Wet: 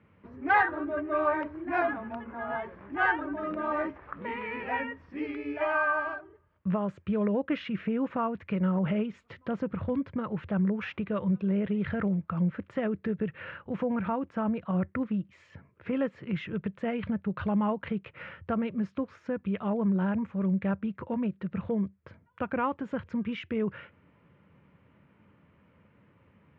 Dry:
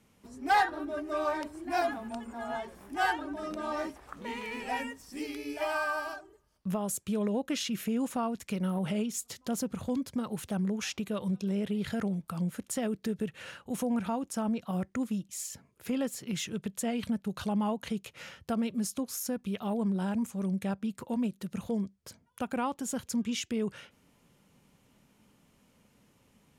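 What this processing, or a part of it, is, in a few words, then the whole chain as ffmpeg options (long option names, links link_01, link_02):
bass cabinet: -af "highpass=84,equalizer=frequency=86:width_type=q:width=4:gain=8,equalizer=frequency=240:width_type=q:width=4:gain=-7,equalizer=frequency=410:width_type=q:width=4:gain=-3,equalizer=frequency=760:width_type=q:width=4:gain=-8,lowpass=frequency=2200:width=0.5412,lowpass=frequency=2200:width=1.3066,volume=6dB"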